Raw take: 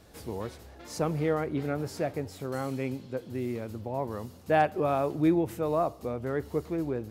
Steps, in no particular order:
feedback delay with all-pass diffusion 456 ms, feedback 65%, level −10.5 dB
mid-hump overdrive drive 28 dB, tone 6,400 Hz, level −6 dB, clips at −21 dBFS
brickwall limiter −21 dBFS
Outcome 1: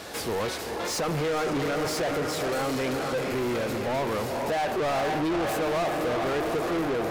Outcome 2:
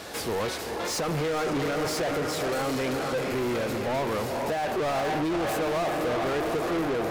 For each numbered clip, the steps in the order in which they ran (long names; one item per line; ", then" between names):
feedback delay with all-pass diffusion, then brickwall limiter, then mid-hump overdrive
feedback delay with all-pass diffusion, then mid-hump overdrive, then brickwall limiter